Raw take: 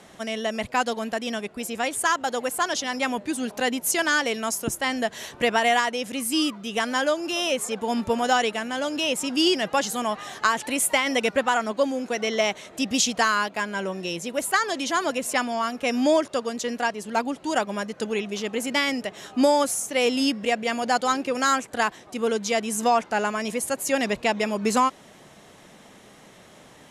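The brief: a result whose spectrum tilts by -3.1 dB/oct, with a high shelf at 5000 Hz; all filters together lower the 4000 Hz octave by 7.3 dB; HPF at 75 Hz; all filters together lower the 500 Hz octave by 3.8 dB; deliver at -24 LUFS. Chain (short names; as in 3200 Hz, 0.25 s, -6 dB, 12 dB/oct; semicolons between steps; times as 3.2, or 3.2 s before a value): HPF 75 Hz; bell 500 Hz -4.5 dB; bell 4000 Hz -8.5 dB; high shelf 5000 Hz -5.5 dB; gain +3.5 dB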